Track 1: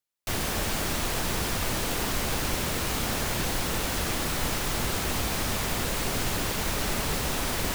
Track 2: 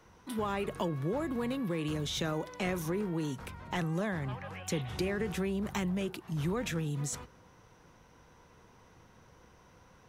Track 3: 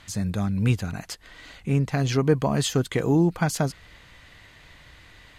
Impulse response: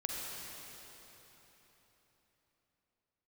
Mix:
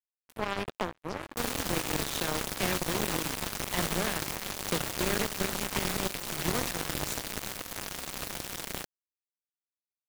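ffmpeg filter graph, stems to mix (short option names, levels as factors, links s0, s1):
-filter_complex "[0:a]highpass=47,aeval=exprs='val(0)*sin(2*PI*100*n/s)':c=same,adelay=1100,volume=0.944[s0];[1:a]adynamicequalizer=threshold=0.00447:dfrequency=160:dqfactor=1.5:tfrequency=160:tqfactor=1.5:attack=5:release=100:ratio=0.375:range=2:mode=cutabove:tftype=bell,volume=1.33,asplit=2[s1][s2];[s2]volume=0.251[s3];[2:a]lowpass=4300,acompressor=threshold=0.0355:ratio=6,asoftclip=type=tanh:threshold=0.0708,volume=0.316,asplit=2[s4][s5];[s5]volume=0.224[s6];[s3][s6]amix=inputs=2:normalize=0,aecho=0:1:65|130|195|260|325|390:1|0.44|0.194|0.0852|0.0375|0.0165[s7];[s0][s1][s4][s7]amix=inputs=4:normalize=0,acrusher=bits=3:mix=0:aa=0.5"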